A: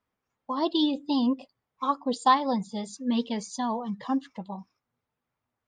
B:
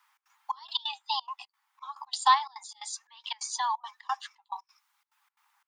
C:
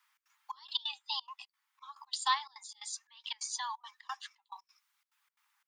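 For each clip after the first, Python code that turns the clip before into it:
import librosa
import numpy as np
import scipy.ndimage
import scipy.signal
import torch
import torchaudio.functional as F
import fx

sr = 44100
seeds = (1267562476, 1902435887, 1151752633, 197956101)

y1 = scipy.signal.sosfilt(scipy.signal.butter(16, 810.0, 'highpass', fs=sr, output='sos'), x)
y1 = fx.step_gate(y1, sr, bpm=176, pattern='xx.xxx..x.xxxx.', floor_db=-24.0, edge_ms=4.5)
y1 = fx.band_squash(y1, sr, depth_pct=40)
y1 = y1 * 10.0 ** (5.5 / 20.0)
y2 = scipy.signal.sosfilt(scipy.signal.butter(2, 1400.0, 'highpass', fs=sr, output='sos'), y1)
y2 = y2 * 10.0 ** (-3.0 / 20.0)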